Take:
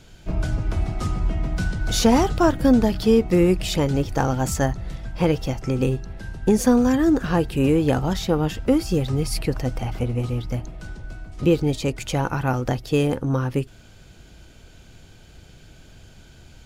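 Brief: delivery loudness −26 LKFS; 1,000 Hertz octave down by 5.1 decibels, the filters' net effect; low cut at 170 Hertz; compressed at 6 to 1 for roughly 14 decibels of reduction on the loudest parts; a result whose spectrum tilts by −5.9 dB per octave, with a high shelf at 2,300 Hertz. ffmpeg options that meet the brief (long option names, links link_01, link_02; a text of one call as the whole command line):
ffmpeg -i in.wav -af "highpass=170,equalizer=frequency=1000:width_type=o:gain=-6,highshelf=frequency=2300:gain=-6.5,acompressor=threshold=-29dB:ratio=6,volume=8dB" out.wav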